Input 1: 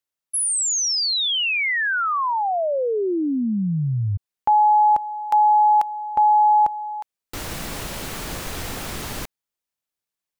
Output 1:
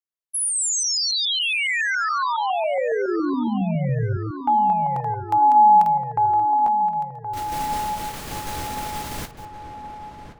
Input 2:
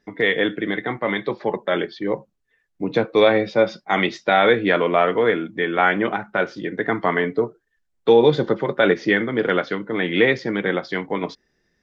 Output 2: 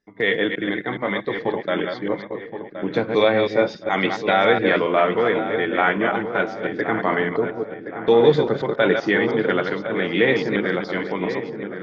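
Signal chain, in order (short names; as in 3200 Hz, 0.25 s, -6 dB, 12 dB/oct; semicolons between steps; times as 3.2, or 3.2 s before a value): reverse delay 0.139 s, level -5 dB; gate -29 dBFS, range -9 dB; on a send: darkening echo 1.071 s, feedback 58%, low-pass 1700 Hz, level -9.5 dB; on the sum: gain -2 dB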